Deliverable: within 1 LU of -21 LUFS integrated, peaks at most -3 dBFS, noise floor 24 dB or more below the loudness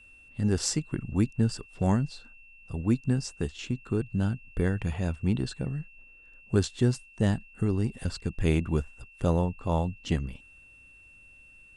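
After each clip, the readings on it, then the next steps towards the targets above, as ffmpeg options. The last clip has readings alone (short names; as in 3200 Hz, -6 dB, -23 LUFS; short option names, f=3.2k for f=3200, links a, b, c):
steady tone 2700 Hz; tone level -52 dBFS; loudness -29.5 LUFS; peak -10.0 dBFS; loudness target -21.0 LUFS
-> -af "bandreject=f=2.7k:w=30"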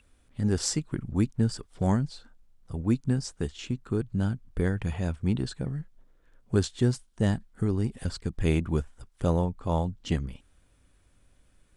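steady tone none; loudness -29.5 LUFS; peak -10.0 dBFS; loudness target -21.0 LUFS
-> -af "volume=8.5dB,alimiter=limit=-3dB:level=0:latency=1"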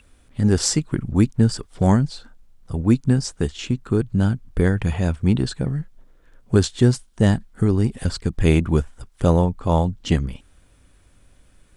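loudness -21.0 LUFS; peak -3.0 dBFS; noise floor -55 dBFS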